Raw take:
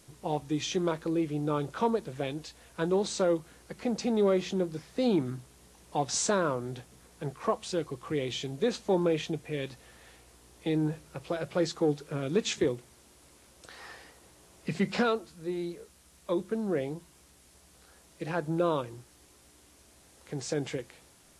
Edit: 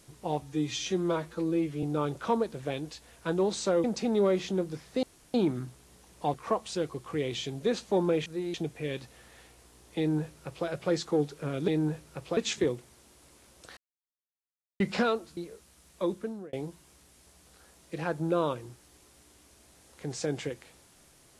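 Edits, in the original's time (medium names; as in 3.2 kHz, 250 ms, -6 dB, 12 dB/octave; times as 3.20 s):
0.42–1.36 s: stretch 1.5×
3.37–3.86 s: delete
5.05 s: insert room tone 0.31 s
6.05–7.31 s: delete
10.67–11.36 s: copy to 12.37 s
13.77–14.80 s: mute
15.37–15.65 s: move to 9.23 s
16.40–16.81 s: fade out linear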